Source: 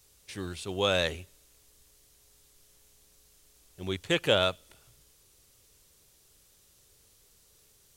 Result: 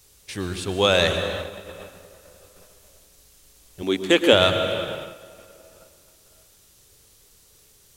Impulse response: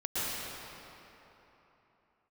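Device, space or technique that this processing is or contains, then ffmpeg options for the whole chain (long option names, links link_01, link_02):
keyed gated reverb: -filter_complex "[0:a]asplit=3[link_01][link_02][link_03];[1:a]atrim=start_sample=2205[link_04];[link_02][link_04]afir=irnorm=-1:irlink=0[link_05];[link_03]apad=whole_len=351082[link_06];[link_05][link_06]sidechaingate=range=-33dB:threshold=-60dB:ratio=16:detection=peak,volume=-12dB[link_07];[link_01][link_07]amix=inputs=2:normalize=0,asettb=1/sr,asplit=3[link_08][link_09][link_10];[link_08]atrim=end=3.824[link_11];[link_09]atrim=start=3.82:end=4.33,asetpts=PTS-STARTPTS,afade=type=in:duration=0.004:curve=qsin,afade=type=out:start_time=0.506:duration=0.004:curve=qsin,lowshelf=frequency=180:width_type=q:width=3:gain=-11.5[link_12];[link_10]atrim=start=4.326[link_13];[link_11][link_12]acrossfade=duration=0.004:curve1=hsin:curve2=qsin[link_14];[link_14][link_13]acrossfade=duration=0.004:curve1=qsin:curve2=hsin,volume=6.5dB"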